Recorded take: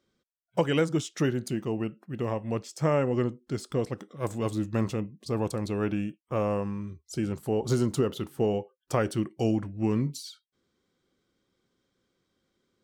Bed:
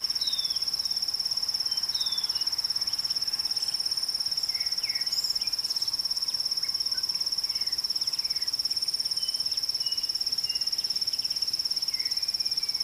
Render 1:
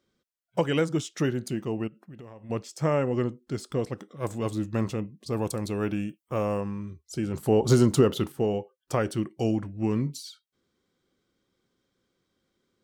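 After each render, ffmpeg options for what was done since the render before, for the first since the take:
-filter_complex "[0:a]asplit=3[a][b][c];[a]afade=t=out:st=1.87:d=0.02[d];[b]acompressor=threshold=-41dB:ratio=8:attack=3.2:release=140:knee=1:detection=peak,afade=t=in:st=1.87:d=0.02,afade=t=out:st=2.49:d=0.02[e];[c]afade=t=in:st=2.49:d=0.02[f];[d][e][f]amix=inputs=3:normalize=0,asettb=1/sr,asplit=3[g][h][i];[g]atrim=end=5.324[j];[h]atrim=start=5.32:end=6.61,asetpts=PTS-STARTPTS,afade=t=in:d=0.004:c=qsin,afade=t=out:st=1.286:d=0.004:c=qsin,highshelf=f=7.5k:g=10[k];[i]atrim=start=6.606[l];[j][k]acrossfade=d=0.004:c1=hsin:c2=qsin[m];[m][l]acrossfade=d=0.004:c1=qsin:c2=hsin,asplit=3[n][o][p];[n]atrim=end=7.342[q];[o]atrim=start=7.338:end=8.322,asetpts=PTS-STARTPTS,volume=6dB[r];[p]atrim=start=8.318[s];[q][r]acrossfade=d=0.004:c1=hsin:c2=hsin[t];[t][s]acrossfade=d=0.004:c1=hsin:c2=hsin"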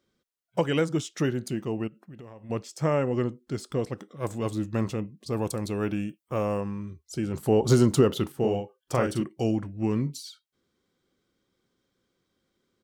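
-filter_complex "[0:a]asplit=3[a][b][c];[a]afade=t=out:st=8.41:d=0.02[d];[b]asplit=2[e][f];[f]adelay=41,volume=-4dB[g];[e][g]amix=inputs=2:normalize=0,afade=t=in:st=8.41:d=0.02,afade=t=out:st=9.22:d=0.02[h];[c]afade=t=in:st=9.22:d=0.02[i];[d][h][i]amix=inputs=3:normalize=0"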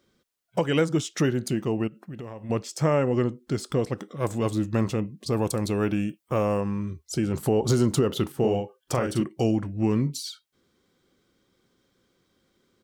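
-filter_complex "[0:a]asplit=2[a][b];[b]acompressor=threshold=-33dB:ratio=6,volume=2dB[c];[a][c]amix=inputs=2:normalize=0,alimiter=limit=-12dB:level=0:latency=1:release=202"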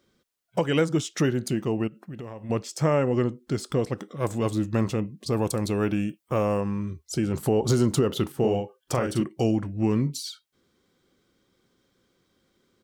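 -af anull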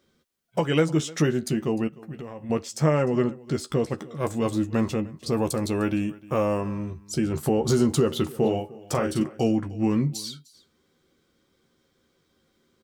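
-filter_complex "[0:a]asplit=2[a][b];[b]adelay=13,volume=-7.5dB[c];[a][c]amix=inputs=2:normalize=0,aecho=1:1:303:0.0841"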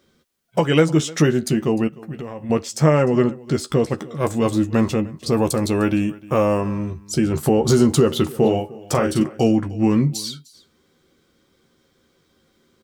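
-af "volume=6dB"

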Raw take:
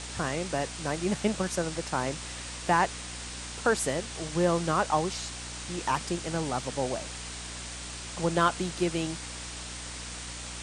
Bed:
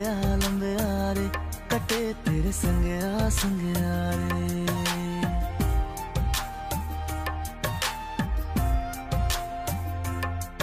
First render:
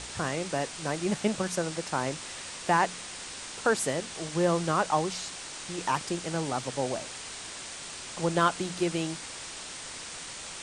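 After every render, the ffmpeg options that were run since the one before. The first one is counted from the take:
-af "bandreject=f=60:t=h:w=4,bandreject=f=120:t=h:w=4,bandreject=f=180:t=h:w=4,bandreject=f=240:t=h:w=4,bandreject=f=300:t=h:w=4"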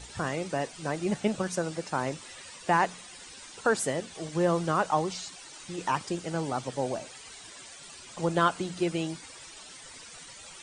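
-af "afftdn=nr=12:nf=-41"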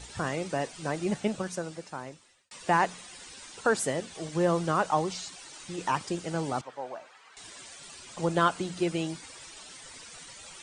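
-filter_complex "[0:a]asettb=1/sr,asplit=3[a][b][c];[a]atrim=end=6.614[d];[b]atrim=start=6.61:end=7.37,asetpts=PTS-STARTPTS,afade=t=in:d=0.004:c=qsin,afade=t=out:st=0.756:d=0.004:c=qsin,bandpass=f=1.2k:t=q:w=1.3[e];[c]atrim=start=7.366[f];[d][e]acrossfade=d=0.004:c1=hsin:c2=qsin[g];[g][f]acrossfade=d=0.004:c1=qsin:c2=hsin,asplit=2[h][i];[h]atrim=end=2.51,asetpts=PTS-STARTPTS,afade=t=out:st=1.02:d=1.49[j];[i]atrim=start=2.51,asetpts=PTS-STARTPTS,afade=t=in:d=0.004:c=hsin[k];[j][k]concat=n=2:v=0:a=1"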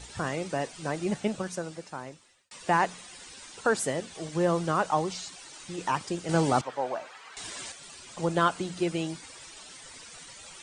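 -filter_complex "[0:a]asettb=1/sr,asplit=3[a][b][c];[a]atrim=end=6.294[d];[b]atrim=start=6.29:end=7.72,asetpts=PTS-STARTPTS,afade=t=in:d=0.004:c=qsin,afade=t=out:st=1.426:d=0.004:c=qsin,acontrast=84[e];[c]atrim=start=7.716[f];[d][e]acrossfade=d=0.004:c1=hsin:c2=qsin[g];[g][f]acrossfade=d=0.004:c1=qsin:c2=hsin"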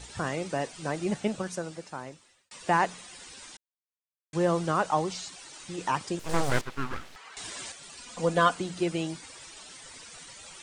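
-filter_complex "[0:a]asettb=1/sr,asplit=3[a][b][c];[a]atrim=end=6.194[d];[b]atrim=start=6.19:end=7.16,asetpts=PTS-STARTPTS,afade=t=in:d=0.004:c=qsin,afade=t=out:st=0.966:d=0.004:c=qsin,aeval=exprs='abs(val(0))':c=same[e];[c]atrim=start=7.156[f];[d][e]acrossfade=d=0.004:c1=hsin:c2=qsin[g];[g][f]acrossfade=d=0.004:c1=qsin:c2=hsin,asettb=1/sr,asplit=3[h][i][j];[h]atrim=end=7.974[k];[i]atrim=start=7.97:end=8.55,asetpts=PTS-STARTPTS,afade=t=in:d=0.004:c=qsin,afade=t=out:st=0.576:d=0.004:c=qsin,aecho=1:1:4.1:0.72,atrim=end_sample=25578[l];[j]atrim=start=8.546[m];[k][l]acrossfade=d=0.004:c1=hsin:c2=qsin[n];[n][m]acrossfade=d=0.004:c1=qsin:c2=hsin,asplit=3[o][p][q];[o]atrim=end=3.57,asetpts=PTS-STARTPTS,afade=t=out:st=3.566:d=0.004:c=hsin[r];[p]atrim=start=3.57:end=4.33,asetpts=PTS-STARTPTS,volume=0[s];[q]atrim=start=4.33,asetpts=PTS-STARTPTS,afade=t=in:d=0.004:c=hsin[t];[r][s][t]concat=n=3:v=0:a=1"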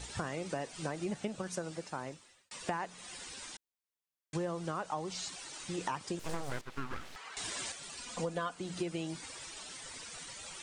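-af "acompressor=threshold=-33dB:ratio=8"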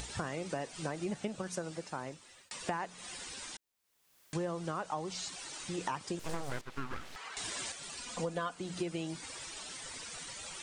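-af "acompressor=mode=upward:threshold=-40dB:ratio=2.5"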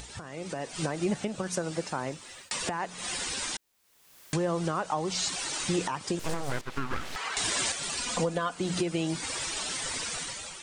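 -af "alimiter=level_in=5.5dB:limit=-24dB:level=0:latency=1:release=373,volume=-5.5dB,dynaudnorm=f=160:g=7:m=11.5dB"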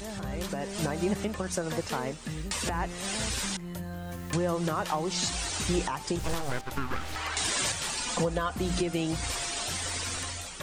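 -filter_complex "[1:a]volume=-11.5dB[a];[0:a][a]amix=inputs=2:normalize=0"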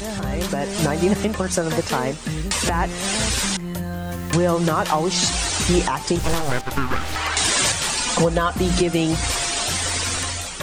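-af "volume=10dB"

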